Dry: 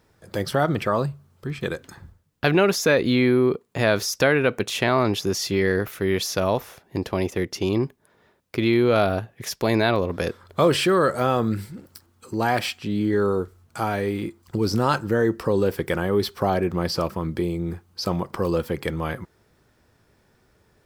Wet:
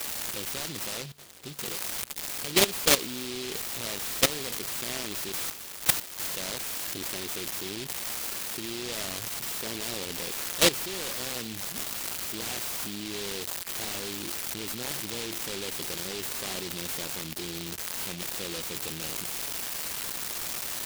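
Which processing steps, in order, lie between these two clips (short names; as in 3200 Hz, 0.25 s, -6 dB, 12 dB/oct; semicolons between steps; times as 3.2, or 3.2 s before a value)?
switching spikes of -13.5 dBFS; level quantiser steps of 16 dB; 0.87–1.59 Chebyshev low-pass 2100 Hz, order 6; 5.32–6.27 differentiator; HPF 330 Hz 6 dB/oct; noise-modulated delay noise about 3400 Hz, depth 0.35 ms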